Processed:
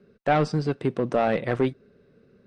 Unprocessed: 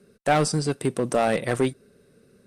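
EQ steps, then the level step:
high-frequency loss of the air 220 metres
0.0 dB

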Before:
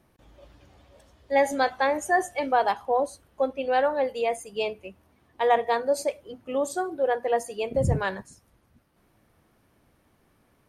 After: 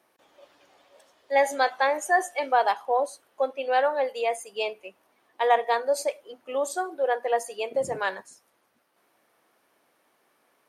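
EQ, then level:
high-pass filter 480 Hz 12 dB per octave
+1.5 dB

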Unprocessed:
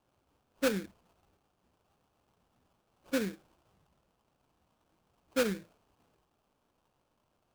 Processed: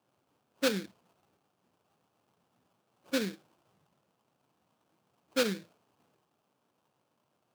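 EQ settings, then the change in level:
high-pass filter 110 Hz 24 dB per octave
dynamic equaliser 4,100 Hz, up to +7 dB, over −57 dBFS, Q 1.2
0.0 dB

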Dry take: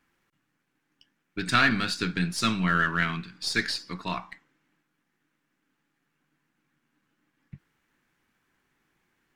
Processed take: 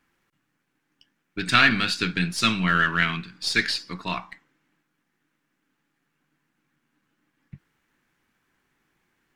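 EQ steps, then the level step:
dynamic equaliser 2,800 Hz, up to +7 dB, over −41 dBFS, Q 1.3
+1.5 dB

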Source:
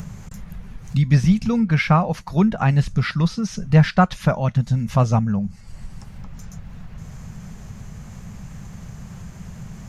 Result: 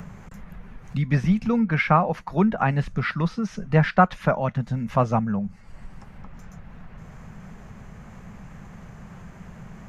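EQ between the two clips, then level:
three-way crossover with the lows and the highs turned down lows −14 dB, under 210 Hz, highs −20 dB, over 2,300 Hz
low-shelf EQ 84 Hz +9.5 dB
high-shelf EQ 2,700 Hz +8.5 dB
0.0 dB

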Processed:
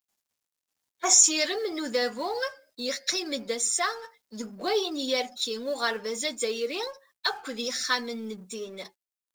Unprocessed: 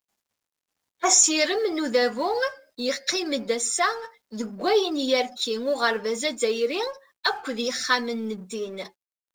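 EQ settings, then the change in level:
high-shelf EQ 3,500 Hz +7 dB
−6.0 dB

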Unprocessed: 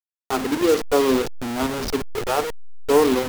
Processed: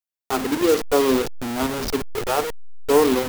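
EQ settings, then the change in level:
high-shelf EQ 11,000 Hz +5 dB
0.0 dB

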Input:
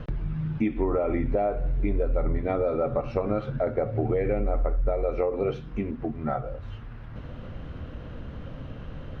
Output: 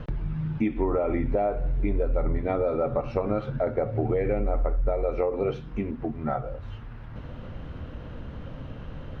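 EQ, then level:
parametric band 900 Hz +3.5 dB 0.21 octaves
0.0 dB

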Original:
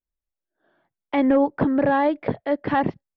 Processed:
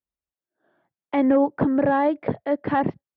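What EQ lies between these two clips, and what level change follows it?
high-pass filter 69 Hz
high-shelf EQ 2,900 Hz −9 dB
0.0 dB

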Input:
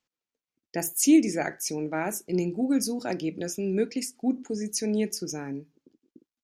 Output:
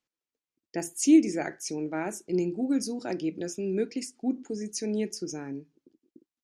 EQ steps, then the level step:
low-pass filter 9,600 Hz 24 dB per octave
parametric band 340 Hz +5 dB 0.49 octaves
−4.0 dB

